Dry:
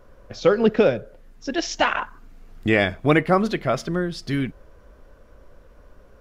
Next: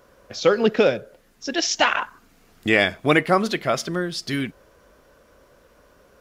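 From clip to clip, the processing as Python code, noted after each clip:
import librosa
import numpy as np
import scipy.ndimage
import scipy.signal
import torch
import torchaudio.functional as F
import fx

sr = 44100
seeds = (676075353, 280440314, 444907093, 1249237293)

y = fx.highpass(x, sr, hz=180.0, slope=6)
y = fx.high_shelf(y, sr, hz=2700.0, db=8.5)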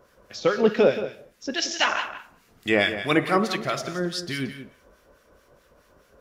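y = fx.rev_gated(x, sr, seeds[0], gate_ms=250, shape='falling', drr_db=10.0)
y = fx.harmonic_tremolo(y, sr, hz=4.7, depth_pct=70, crossover_hz=1300.0)
y = y + 10.0 ** (-11.5 / 20.0) * np.pad(y, (int(177 * sr / 1000.0), 0))[:len(y)]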